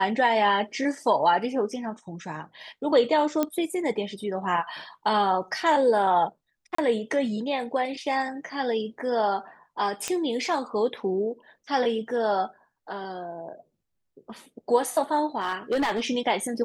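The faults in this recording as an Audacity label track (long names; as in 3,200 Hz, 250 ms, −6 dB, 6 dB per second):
3.430000	3.430000	click −11 dBFS
6.750000	6.780000	drop-out 34 ms
10.080000	10.080000	click −13 dBFS
15.400000	16.000000	clipping −20.5 dBFS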